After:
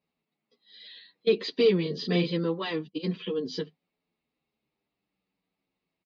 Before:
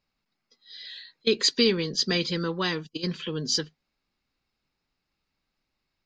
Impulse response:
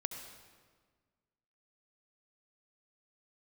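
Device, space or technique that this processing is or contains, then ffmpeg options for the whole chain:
barber-pole flanger into a guitar amplifier: -filter_complex "[0:a]asettb=1/sr,asplit=3[link_01][link_02][link_03];[link_01]atrim=end=1.824[link_04];[link_02]atrim=start=1.82:end=2.32,asetpts=PTS-STARTPTS,afade=type=in:duration=0.004:curve=qsin,afade=type=out:start_time=0.496:duration=0.004:curve=qsin,asplit=2[link_05][link_06];[link_06]adelay=34,volume=-4dB[link_07];[link_05][link_07]amix=inputs=2:normalize=0,atrim=end_sample=22050[link_08];[link_03]atrim=start=2.316[link_09];[link_04][link_08]acrossfade=duration=0.004:curve1=hsin:curve2=qsin[link_10];[link_10][link_09]acrossfade=duration=0.004:curve1=qsin:curve2=hsin,asplit=2[link_11][link_12];[link_12]adelay=9.1,afreqshift=-0.49[link_13];[link_11][link_13]amix=inputs=2:normalize=1,asoftclip=type=tanh:threshold=-18dB,highpass=78,equalizer=frequency=86:width_type=q:width=4:gain=-8,equalizer=frequency=190:width_type=q:width=4:gain=7,equalizer=frequency=300:width_type=q:width=4:gain=4,equalizer=frequency=440:width_type=q:width=4:gain=7,equalizer=frequency=670:width_type=q:width=4:gain=4,equalizer=frequency=1500:width_type=q:width=4:gain=-9,lowpass=frequency=3800:width=0.5412,lowpass=frequency=3800:width=1.3066"

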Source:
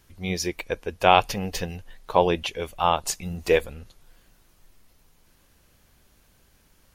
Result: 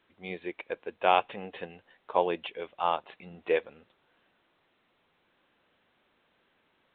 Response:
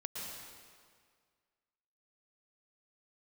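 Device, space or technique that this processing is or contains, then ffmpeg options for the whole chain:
telephone: -af "highpass=290,lowpass=3000,volume=-6dB" -ar 8000 -c:a pcm_alaw

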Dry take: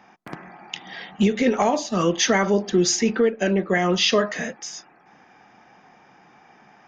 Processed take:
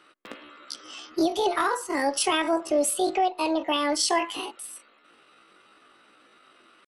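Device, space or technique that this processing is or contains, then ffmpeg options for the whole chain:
chipmunk voice: -af "asetrate=72056,aresample=44100,atempo=0.612027,volume=-4.5dB"

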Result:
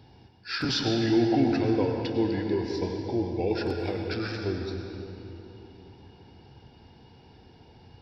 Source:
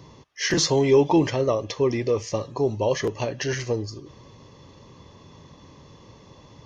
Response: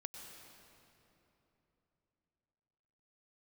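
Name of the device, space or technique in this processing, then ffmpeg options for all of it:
slowed and reverbed: -filter_complex "[0:a]asetrate=36603,aresample=44100[link_01];[1:a]atrim=start_sample=2205[link_02];[link_01][link_02]afir=irnorm=-1:irlink=0,volume=-1.5dB"

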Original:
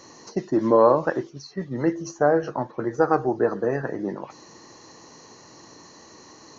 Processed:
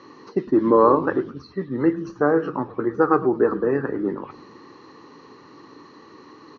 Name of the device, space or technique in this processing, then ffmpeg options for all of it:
frequency-shifting delay pedal into a guitar cabinet: -filter_complex "[0:a]asplit=6[link_01][link_02][link_03][link_04][link_05][link_06];[link_02]adelay=106,afreqshift=-150,volume=-17dB[link_07];[link_03]adelay=212,afreqshift=-300,volume=-22.2dB[link_08];[link_04]adelay=318,afreqshift=-450,volume=-27.4dB[link_09];[link_05]adelay=424,afreqshift=-600,volume=-32.6dB[link_10];[link_06]adelay=530,afreqshift=-750,volume=-37.8dB[link_11];[link_01][link_07][link_08][link_09][link_10][link_11]amix=inputs=6:normalize=0,highpass=94,equalizer=frequency=280:width_type=q:width=4:gain=7,equalizer=frequency=410:width_type=q:width=4:gain=6,equalizer=frequency=660:width_type=q:width=4:gain=-10,equalizer=frequency=1200:width_type=q:width=4:gain=8,lowpass=frequency=3800:width=0.5412,lowpass=frequency=3800:width=1.3066"

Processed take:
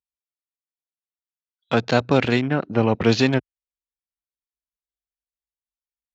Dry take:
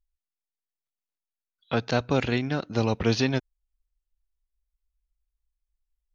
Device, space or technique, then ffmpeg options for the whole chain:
over-cleaned archive recording: -af "highpass=110,lowpass=6000,afwtdn=0.00891,volume=6.5dB"

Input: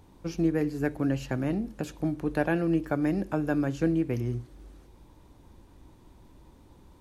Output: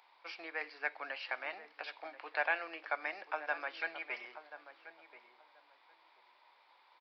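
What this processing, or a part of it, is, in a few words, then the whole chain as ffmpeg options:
musical greeting card: -filter_complex "[0:a]asettb=1/sr,asplit=3[link_01][link_02][link_03];[link_01]atrim=end=3.794[link_04];[link_02]atrim=start=3.79:end=4.25,asetpts=PTS-STARTPTS,afade=type=in:duration=0.004:curve=qsin,afade=type=out:start_time=0.456:duration=0.004:curve=qsin,aecho=1:1:4.9:0.82,atrim=end_sample=20286[link_05];[link_03]atrim=start=4.246[link_06];[link_04][link_05]acrossfade=duration=0.004:curve1=hsin:curve2=qsin[link_07];[link_07][link_06]acrossfade=duration=0.004:curve1=qsin:curve2=hsin,asplit=2[link_08][link_09];[link_09]adelay=1033,lowpass=frequency=1200:poles=1,volume=-11.5dB,asplit=2[link_10][link_11];[link_11]adelay=1033,lowpass=frequency=1200:poles=1,volume=0.21,asplit=2[link_12][link_13];[link_13]adelay=1033,lowpass=frequency=1200:poles=1,volume=0.21[link_14];[link_08][link_10][link_12][link_14]amix=inputs=4:normalize=0,aresample=11025,aresample=44100,highpass=frequency=780:width=0.5412,highpass=frequency=780:width=1.3066,equalizer=frequency=2200:width_type=o:width=0.31:gain=8.5"

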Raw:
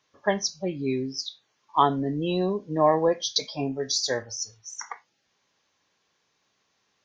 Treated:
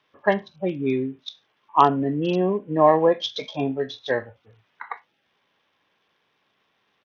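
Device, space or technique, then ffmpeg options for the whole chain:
Bluetooth headset: -af "highpass=frequency=120:poles=1,aresample=8000,aresample=44100,volume=4.5dB" -ar 48000 -c:a sbc -b:a 64k

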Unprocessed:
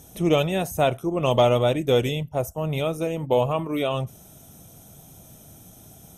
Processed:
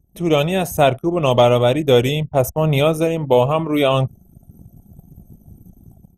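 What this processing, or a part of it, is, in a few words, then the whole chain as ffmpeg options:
voice memo with heavy noise removal: -af "anlmdn=0.251,dynaudnorm=framelen=120:gausssize=5:maxgain=13.5dB,volume=-1dB"

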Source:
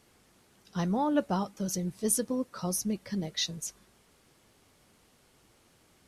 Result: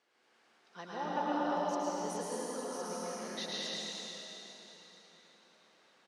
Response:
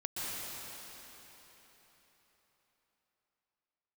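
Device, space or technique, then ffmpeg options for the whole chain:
station announcement: -filter_complex "[0:a]highpass=460,lowpass=4600,equalizer=frequency=1600:width_type=o:width=0.31:gain=4,aecho=1:1:107.9|195.3:0.631|0.316[link_01];[1:a]atrim=start_sample=2205[link_02];[link_01][link_02]afir=irnorm=-1:irlink=0,asettb=1/sr,asplit=3[link_03][link_04][link_05];[link_03]atrim=end=1.584[link_06];[link_04]atrim=start=1.58:end=2.8,asetpts=PTS-STARTPTS,afade=type=in:duration=0.004:curve=qsin,afade=type=out:start_time=1.216:duration=0.004:curve=qsin,equalizer=frequency=1500:width_type=o:width=0.3:gain=-6[link_07];[link_05]atrim=start=2.796[link_08];[link_06][link_07]acrossfade=duration=0.004:curve1=hsin:curve2=qsin[link_09];[link_09][link_08]acrossfade=duration=0.004:curve1=qsin:curve2=hsin,volume=-6dB"

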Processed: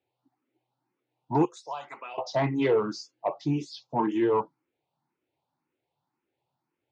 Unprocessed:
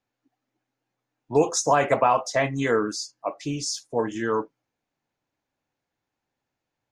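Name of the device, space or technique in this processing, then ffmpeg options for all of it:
barber-pole phaser into a guitar amplifier: -filter_complex "[0:a]asettb=1/sr,asplit=3[link_01][link_02][link_03];[link_01]atrim=end=1.454[link_04];[link_02]atrim=start=1.45:end=2.18,asetpts=PTS-STARTPTS,afade=type=in:duration=0.004:curve=qsin,afade=type=out:start_time=0.726:duration=0.004:curve=qsin,aderivative[link_05];[link_03]atrim=start=2.176[link_06];[link_04][link_05]acrossfade=duration=0.004:curve1=hsin:curve2=qsin[link_07];[link_07][link_06]acrossfade=duration=0.004:curve1=qsin:curve2=hsin,asplit=2[link_08][link_09];[link_09]afreqshift=1.9[link_10];[link_08][link_10]amix=inputs=2:normalize=1,asoftclip=type=tanh:threshold=-20dB,highpass=98,equalizer=frequency=140:width_type=q:width=4:gain=7,equalizer=frequency=360:width_type=q:width=4:gain=8,equalizer=frequency=900:width_type=q:width=4:gain=7,equalizer=frequency=1700:width_type=q:width=4:gain=-7,lowpass=frequency=4400:width=0.5412,lowpass=frequency=4400:width=1.3066,volume=1.5dB"

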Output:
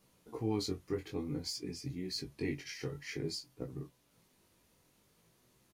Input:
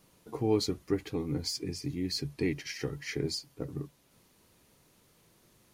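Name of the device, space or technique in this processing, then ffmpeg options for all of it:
double-tracked vocal: -filter_complex "[0:a]asplit=2[link_01][link_02];[link_02]adelay=24,volume=-13dB[link_03];[link_01][link_03]amix=inputs=2:normalize=0,flanger=delay=15.5:depth=6.6:speed=0.53,volume=-2.5dB"

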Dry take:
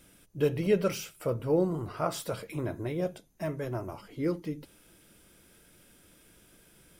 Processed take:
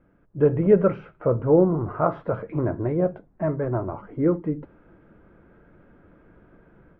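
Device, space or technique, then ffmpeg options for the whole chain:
action camera in a waterproof case: -af "lowpass=frequency=1500:width=0.5412,lowpass=frequency=1500:width=1.3066,dynaudnorm=framelen=230:gausssize=3:maxgain=9dB" -ar 44100 -c:a aac -b:a 64k

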